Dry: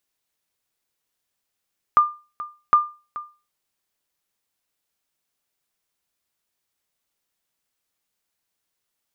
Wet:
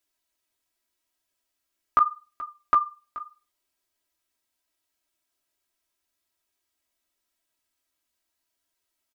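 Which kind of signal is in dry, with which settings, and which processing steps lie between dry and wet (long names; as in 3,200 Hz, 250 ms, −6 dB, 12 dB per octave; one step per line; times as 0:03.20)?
ping with an echo 1,200 Hz, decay 0.32 s, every 0.76 s, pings 2, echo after 0.43 s, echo −17 dB −7 dBFS
flanger 0.8 Hz, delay 9 ms, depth 10 ms, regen −22%
comb filter 3.1 ms, depth 97%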